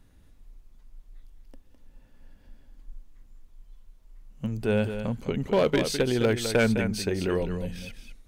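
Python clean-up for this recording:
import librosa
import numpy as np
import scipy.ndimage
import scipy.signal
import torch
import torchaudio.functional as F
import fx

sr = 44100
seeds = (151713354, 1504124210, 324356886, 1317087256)

y = fx.fix_declip(x, sr, threshold_db=-15.5)
y = fx.fix_echo_inverse(y, sr, delay_ms=208, level_db=-9.5)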